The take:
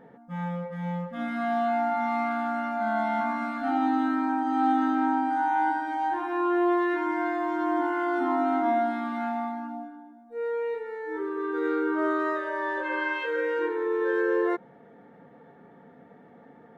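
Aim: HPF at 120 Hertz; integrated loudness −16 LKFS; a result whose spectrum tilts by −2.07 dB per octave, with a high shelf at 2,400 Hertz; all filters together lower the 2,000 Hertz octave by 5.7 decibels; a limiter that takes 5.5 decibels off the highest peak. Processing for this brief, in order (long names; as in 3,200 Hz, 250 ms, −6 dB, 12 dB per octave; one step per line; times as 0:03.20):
high-pass filter 120 Hz
parametric band 2,000 Hz −5 dB
high-shelf EQ 2,400 Hz −6.5 dB
level +14 dB
brickwall limiter −7 dBFS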